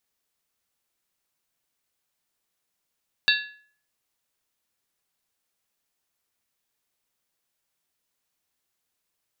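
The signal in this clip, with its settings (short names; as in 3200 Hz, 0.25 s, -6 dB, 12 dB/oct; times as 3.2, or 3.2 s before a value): skin hit, lowest mode 1700 Hz, modes 5, decay 0.51 s, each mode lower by 1 dB, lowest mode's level -18 dB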